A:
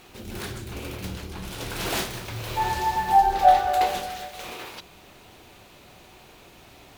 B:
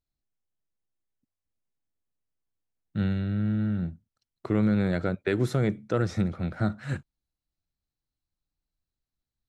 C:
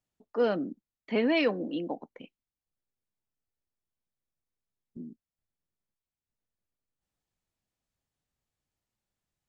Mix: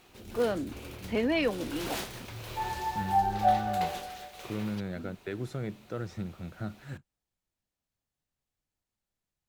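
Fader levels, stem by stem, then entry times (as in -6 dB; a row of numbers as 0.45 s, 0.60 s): -8.5 dB, -10.5 dB, -2.0 dB; 0.00 s, 0.00 s, 0.00 s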